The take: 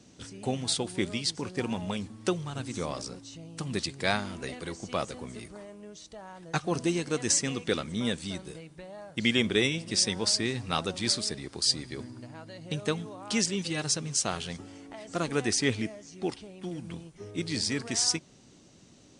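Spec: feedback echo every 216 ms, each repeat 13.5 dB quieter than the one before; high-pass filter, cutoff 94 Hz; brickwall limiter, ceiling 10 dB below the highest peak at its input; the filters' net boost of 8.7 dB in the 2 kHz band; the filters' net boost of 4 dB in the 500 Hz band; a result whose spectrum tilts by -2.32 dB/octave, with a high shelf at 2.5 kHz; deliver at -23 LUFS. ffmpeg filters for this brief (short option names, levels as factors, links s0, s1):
-af "highpass=94,equalizer=f=500:t=o:g=4.5,equalizer=f=2000:t=o:g=7.5,highshelf=f=2500:g=5.5,alimiter=limit=0.211:level=0:latency=1,aecho=1:1:216|432:0.211|0.0444,volume=1.78"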